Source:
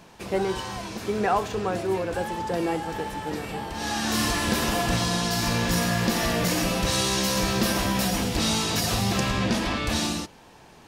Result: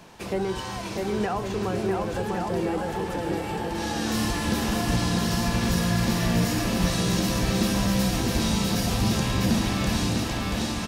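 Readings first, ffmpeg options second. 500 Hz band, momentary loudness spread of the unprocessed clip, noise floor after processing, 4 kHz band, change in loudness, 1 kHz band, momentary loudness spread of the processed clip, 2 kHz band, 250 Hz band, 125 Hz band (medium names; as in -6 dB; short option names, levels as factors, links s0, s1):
-1.0 dB, 8 LU, -33 dBFS, -3.0 dB, -0.5 dB, -2.5 dB, 6 LU, -2.5 dB, +2.5 dB, +3.5 dB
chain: -filter_complex "[0:a]aecho=1:1:650|1105|1424|1646|1803:0.631|0.398|0.251|0.158|0.1,acrossover=split=310[s0][s1];[s1]acompressor=threshold=0.0251:ratio=2.5[s2];[s0][s2]amix=inputs=2:normalize=0,volume=1.19"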